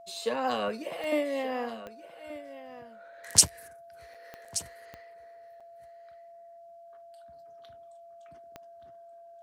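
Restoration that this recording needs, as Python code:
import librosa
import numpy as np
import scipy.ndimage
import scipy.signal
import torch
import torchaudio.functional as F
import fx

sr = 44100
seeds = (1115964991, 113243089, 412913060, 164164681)

y = fx.fix_declick_ar(x, sr, threshold=10.0)
y = fx.notch(y, sr, hz=680.0, q=30.0)
y = fx.fix_interpolate(y, sr, at_s=(4.14, 4.45, 5.6), length_ms=5.6)
y = fx.fix_echo_inverse(y, sr, delay_ms=1177, level_db=-14.5)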